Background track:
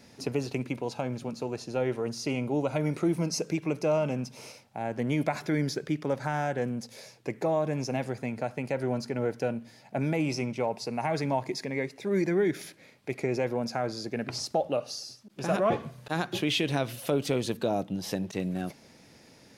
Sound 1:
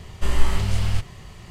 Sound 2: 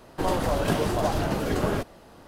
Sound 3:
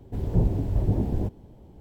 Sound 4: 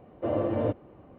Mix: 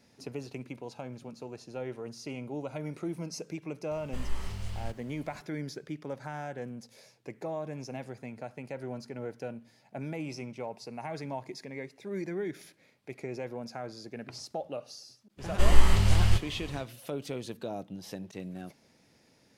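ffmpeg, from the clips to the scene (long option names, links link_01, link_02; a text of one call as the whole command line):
ffmpeg -i bed.wav -i cue0.wav -filter_complex "[1:a]asplit=2[link_01][link_02];[0:a]volume=-9dB[link_03];[link_01]acrusher=bits=7:mix=0:aa=0.5,atrim=end=1.5,asetpts=PTS-STARTPTS,volume=-15dB,afade=type=in:duration=0.004:curve=hsin,afade=type=out:start_time=1.496:duration=0.004:curve=hsin,adelay=3910[link_04];[link_02]atrim=end=1.5,asetpts=PTS-STARTPTS,volume=-0.5dB,afade=type=in:duration=0.1,afade=type=out:start_time=1.4:duration=0.1,adelay=15370[link_05];[link_03][link_04][link_05]amix=inputs=3:normalize=0" out.wav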